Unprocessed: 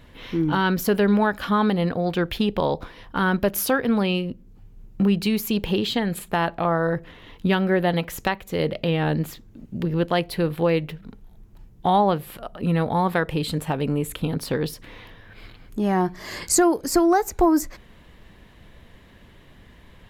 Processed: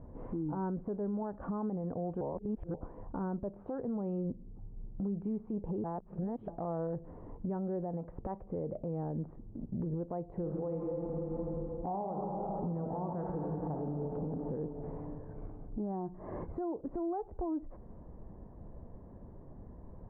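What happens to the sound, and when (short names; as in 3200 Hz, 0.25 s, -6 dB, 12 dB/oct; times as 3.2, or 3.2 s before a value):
2.21–2.74 reverse
5.84–6.48 reverse
10.27–14 reverb throw, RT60 2.9 s, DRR 1 dB
whole clip: inverse Chebyshev low-pass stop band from 5000 Hz, stop band 80 dB; compressor 6:1, threshold -31 dBFS; limiter -29 dBFS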